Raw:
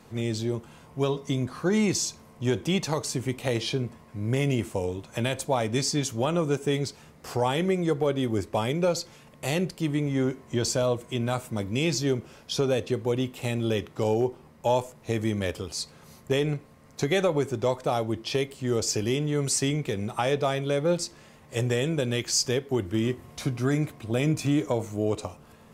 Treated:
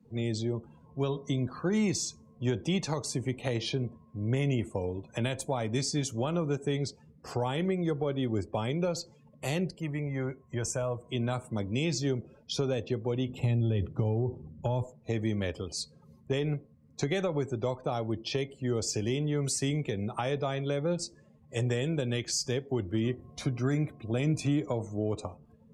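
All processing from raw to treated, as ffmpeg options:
ffmpeg -i in.wav -filter_complex "[0:a]asettb=1/sr,asplit=3[link_01][link_02][link_03];[link_01]atrim=end=9.804[link_04];[link_02]atrim=start=9.8:end=11.06,asetpts=PTS-STARTPTS,afade=type=in:duration=0.004:curve=qsin,afade=type=out:start_time=1.256:duration=0.004:curve=qsin,asuperstop=centerf=4100:order=4:qfactor=1.4,equalizer=frequency=280:width=1.1:gain=-8.5[link_05];[link_03]atrim=start=11.056[link_06];[link_04][link_05]acrossfade=duration=0.004:curve1=hsin:curve2=qsin[link_07];[link_07][link_06]acrossfade=duration=0.004:curve1=qsin:curve2=hsin,asettb=1/sr,asplit=3[link_08][link_09][link_10];[link_08]atrim=end=13.294[link_11];[link_09]atrim=start=13.29:end=14.84,asetpts=PTS-STARTPTS,afade=type=in:duration=0.004:curve=qsin,afade=type=out:start_time=1.546:duration=0.004:curve=qsin,equalizer=frequency=97:width=0.54:gain=14,acompressor=threshold=-20dB:ratio=10:attack=3.2:release=140:knee=1:detection=peak[link_12];[link_10]atrim=start=14.836[link_13];[link_11][link_12]acrossfade=duration=0.004:curve1=hsin:curve2=qsin[link_14];[link_14][link_13]acrossfade=duration=0.004:curve1=qsin:curve2=hsin,afftdn=noise_reduction=25:noise_floor=-45,acrossover=split=220[link_15][link_16];[link_16]acompressor=threshold=-30dB:ratio=2[link_17];[link_15][link_17]amix=inputs=2:normalize=0,volume=-2dB" out.wav

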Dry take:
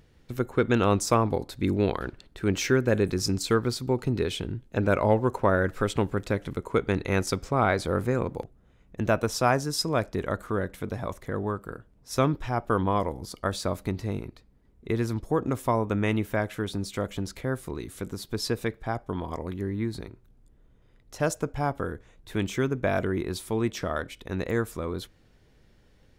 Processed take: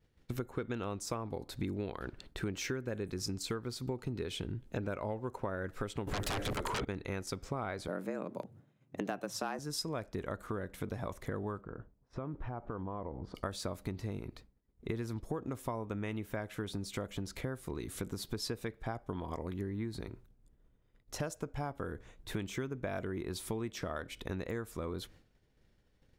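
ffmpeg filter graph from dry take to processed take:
ffmpeg -i in.wav -filter_complex "[0:a]asettb=1/sr,asplit=3[link_01][link_02][link_03];[link_01]atrim=end=6.074[link_04];[link_02]atrim=start=6.07:end=6.85,asetpts=PTS-STARTPTS,afade=type=in:duration=0.004:curve=qsin,afade=type=out:start_time=0.776:duration=0.004:curve=qsin,equalizer=frequency=170:width_type=o:width=0.58:gain=-6,acompressor=threshold=-27dB:ratio=5:attack=3.2:release=140:knee=1:detection=peak,aeval=exprs='0.106*sin(PI/2*7.94*val(0)/0.106)':channel_layout=same[link_05];[link_03]atrim=start=6.846[link_06];[link_04][link_05]acrossfade=duration=0.004:curve1=hsin:curve2=qsin[link_07];[link_07][link_06]acrossfade=duration=0.004:curve1=qsin:curve2=hsin,asettb=1/sr,asplit=3[link_08][link_09][link_10];[link_08]atrim=end=7.884[link_11];[link_09]atrim=start=7.88:end=9.59,asetpts=PTS-STARTPTS,afade=type=in:duration=0.004:curve=qsin,afade=type=out:start_time=1.706:duration=0.004:curve=qsin,asoftclip=type=hard:threshold=-12dB,afreqshift=90[link_12];[link_10]atrim=start=9.586[link_13];[link_11][link_12]acrossfade=duration=0.004:curve1=hsin:curve2=qsin[link_14];[link_14][link_13]acrossfade=duration=0.004:curve1=qsin:curve2=hsin,asettb=1/sr,asplit=3[link_15][link_16][link_17];[link_15]atrim=end=11.614[link_18];[link_16]atrim=start=11.61:end=13.35,asetpts=PTS-STARTPTS,afade=type=in:duration=0.004:curve=qsin,afade=type=out:start_time=1.736:duration=0.004:curve=qsin,lowpass=1400,acompressor=threshold=-38dB:ratio=4:attack=3.2:release=140:knee=1:detection=peak[link_19];[link_17]atrim=start=13.346[link_20];[link_18][link_19]acrossfade=duration=0.004:curve1=hsin:curve2=qsin[link_21];[link_21][link_20]acrossfade=duration=0.004:curve1=qsin:curve2=hsin,agate=range=-33dB:threshold=-49dB:ratio=3:detection=peak,acompressor=threshold=-36dB:ratio=8,volume=1.5dB" out.wav

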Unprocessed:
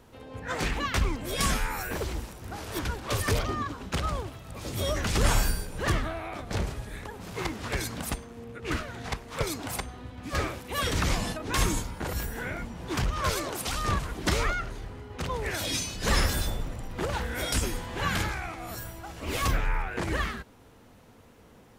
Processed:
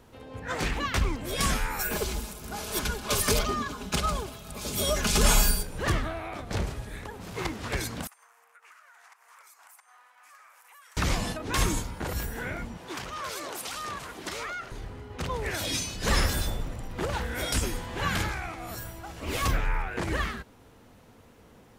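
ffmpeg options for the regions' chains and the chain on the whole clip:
ffmpeg -i in.wav -filter_complex "[0:a]asettb=1/sr,asplit=3[link_01][link_02][link_03];[link_01]atrim=end=1.794[link_04];[link_02]atrim=start=1.79:end=5.63,asetpts=PTS-STARTPTS,afade=type=in:duration=0.004:curve=qsin,afade=type=out:start_time=3.836:duration=0.004:curve=qsin,highshelf=frequency=3900:gain=8.5,bandreject=frequency=1900:width=12,aecho=1:1:4.8:0.57,atrim=end_sample=169344[link_05];[link_03]atrim=start=5.626[link_06];[link_04][link_05]acrossfade=duration=0.004:curve1=hsin:curve2=qsin[link_07];[link_07][link_06]acrossfade=duration=0.004:curve1=qsin:curve2=hsin,asettb=1/sr,asplit=3[link_08][link_09][link_10];[link_08]atrim=end=8.074[link_11];[link_09]atrim=start=8.07:end=10.97,asetpts=PTS-STARTPTS,afade=type=in:duration=0.004:curve=qsin,afade=type=out:start_time=2.896:duration=0.004:curve=qsin,highpass=frequency=1000:width=0.5412,highpass=frequency=1000:width=1.3066,equalizer=frequency=3700:width=1.1:gain=-15,acompressor=threshold=-51dB:ratio=8:attack=3.2:release=140:knee=1:detection=peak[link_12];[link_10]atrim=start=10.966[link_13];[link_11][link_12]acrossfade=duration=0.004:curve1=hsin:curve2=qsin[link_14];[link_14][link_13]acrossfade=duration=0.004:curve1=qsin:curve2=hsin,asettb=1/sr,asplit=3[link_15][link_16][link_17];[link_15]atrim=end=12.774[link_18];[link_16]atrim=start=12.77:end=14.72,asetpts=PTS-STARTPTS,afade=type=in:duration=0.004:curve=qsin,afade=type=out:start_time=1.946:duration=0.004:curve=qsin,highpass=frequency=460:poles=1,acompressor=threshold=-32dB:ratio=4:attack=3.2:release=140:knee=1:detection=peak[link_19];[link_17]atrim=start=14.716[link_20];[link_18][link_19]acrossfade=duration=0.004:curve1=hsin:curve2=qsin[link_21];[link_21][link_20]acrossfade=duration=0.004:curve1=qsin:curve2=hsin" out.wav

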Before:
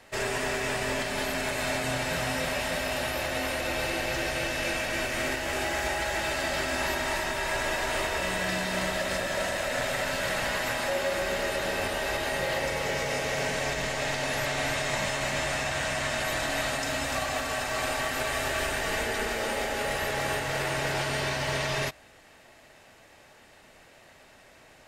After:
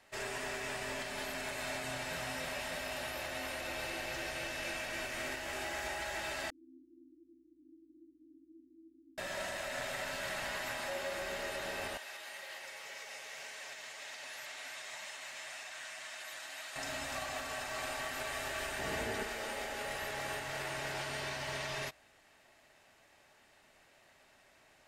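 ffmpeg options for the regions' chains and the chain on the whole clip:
ffmpeg -i in.wav -filter_complex "[0:a]asettb=1/sr,asplit=3[link_01][link_02][link_03];[link_01]atrim=end=6.504[link_04];[link_02]atrim=start=6.5:end=9.18,asetpts=PTS-STARTPTS,afade=type=in:duration=0.004:curve=qsin,afade=type=out:start_time=2.676:duration=0.004:curve=qsin,volume=27.5dB,asoftclip=hard,volume=-27.5dB,asuperpass=centerf=300:order=12:qfactor=3.8,aeval=exprs='val(0)+0.0002*(sin(2*PI*60*n/s)+sin(2*PI*2*60*n/s)/2+sin(2*PI*3*60*n/s)/3+sin(2*PI*4*60*n/s)/4+sin(2*PI*5*60*n/s)/5)':channel_layout=same[link_05];[link_03]atrim=start=9.176[link_06];[link_04][link_05]acrossfade=duration=0.004:curve1=hsin:curve2=qsin[link_07];[link_07][link_06]acrossfade=duration=0.004:curve1=qsin:curve2=hsin,asettb=1/sr,asplit=3[link_08][link_09][link_10];[link_08]atrim=end=11.974[link_11];[link_09]atrim=start=11.97:end=16.76,asetpts=PTS-STARTPTS,afade=type=in:duration=0.004:curve=qsin,afade=type=out:start_time=4.786:duration=0.004:curve=qsin,highpass=frequency=1500:poles=1,flanger=delay=1.7:depth=8.3:regen=49:speed=1.9:shape=triangular[link_12];[link_10]atrim=start=16.756[link_13];[link_11][link_12]acrossfade=duration=0.004:curve1=hsin:curve2=qsin[link_14];[link_14][link_13]acrossfade=duration=0.004:curve1=qsin:curve2=hsin,asettb=1/sr,asplit=3[link_15][link_16][link_17];[link_15]atrim=end=18.794[link_18];[link_16]atrim=start=18.79:end=19.23,asetpts=PTS-STARTPTS,afade=type=in:duration=0.004:curve=qsin,afade=type=out:start_time=0.436:duration=0.004:curve=qsin,highpass=64,lowshelf=frequency=460:gain=10.5[link_19];[link_17]atrim=start=19.226[link_20];[link_18][link_19]acrossfade=duration=0.004:curve1=hsin:curve2=qsin[link_21];[link_21][link_20]acrossfade=duration=0.004:curve1=qsin:curve2=hsin,lowshelf=frequency=380:gain=-5,bandreject=frequency=490:width=12,volume=-9dB" out.wav

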